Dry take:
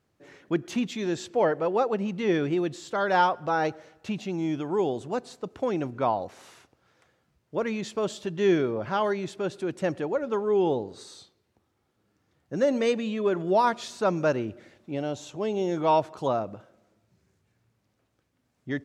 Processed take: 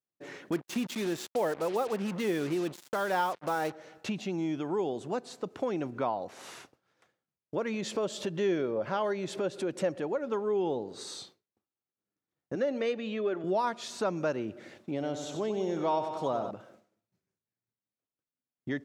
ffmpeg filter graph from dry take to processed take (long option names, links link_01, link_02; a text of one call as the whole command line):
ffmpeg -i in.wav -filter_complex "[0:a]asettb=1/sr,asplit=3[link_01][link_02][link_03];[link_01]atrim=end=0.524[link_04];[link_02]atrim=start=0.52:end=3.72,asetpts=PTS-STARTPTS,afade=type=in:duration=0.004:curve=qsin,afade=type=out:start_time=3.196:duration=0.004:curve=qsin,agate=range=-33dB:threshold=-42dB:ratio=3:release=100:detection=peak,acrusher=bits=5:mix=0:aa=0.5[link_05];[link_03]atrim=start=3.716[link_06];[link_04][link_05]acrossfade=duration=0.004:curve1=hsin:curve2=qsin[link_07];[link_07][link_06]acrossfade=duration=0.004:curve1=qsin:curve2=hsin,asettb=1/sr,asplit=3[link_08][link_09][link_10];[link_08]atrim=end=7.744[link_11];[link_09]atrim=start=7.74:end=10.01,asetpts=PTS-STARTPTS,afade=type=in:duration=0.004:curve=qsin,afade=type=out:start_time=2.266:duration=0.004:curve=qsin,equalizer=frequency=540:width_type=o:width=0.32:gain=7,acompressor=mode=upward:threshold=-29dB:ratio=2.5:attack=3.2:release=140:knee=2.83:detection=peak[link_12];[link_10]atrim=start=10.006[link_13];[link_11][link_12]acrossfade=duration=0.004:curve1=hsin:curve2=qsin[link_14];[link_14][link_13]acrossfade=duration=0.004:curve1=qsin:curve2=hsin,asettb=1/sr,asplit=3[link_15][link_16][link_17];[link_15]atrim=end=12.554[link_18];[link_16]atrim=start=12.55:end=13.44,asetpts=PTS-STARTPTS,afade=type=in:duration=0.004:curve=qsin,afade=type=out:start_time=0.886:duration=0.004:curve=qsin,highpass=250,lowpass=4300,bandreject=frequency=1000:width=6.4[link_19];[link_17]atrim=start=13.436[link_20];[link_18][link_19]acrossfade=duration=0.004:curve1=hsin:curve2=qsin[link_21];[link_21][link_20]acrossfade=duration=0.004:curve1=qsin:curve2=hsin,asettb=1/sr,asplit=3[link_22][link_23][link_24];[link_22]atrim=end=14.914[link_25];[link_23]atrim=start=14.91:end=16.51,asetpts=PTS-STARTPTS,afade=type=in:duration=0.004:curve=qsin,afade=type=out:start_time=1.596:duration=0.004:curve=qsin,bandreject=frequency=2700:width=12,aecho=1:1:93|186|279|372|465|558|651:0.355|0.202|0.115|0.0657|0.0375|0.0213|0.0122,atrim=end_sample=70560[link_26];[link_24]atrim=start=16.506[link_27];[link_25][link_26]acrossfade=duration=0.004:curve1=hsin:curve2=qsin[link_28];[link_28][link_27]acrossfade=duration=0.004:curve1=qsin:curve2=hsin,highpass=140,agate=range=-33dB:threshold=-55dB:ratio=3:detection=peak,acompressor=threshold=-44dB:ratio=2,volume=6.5dB" out.wav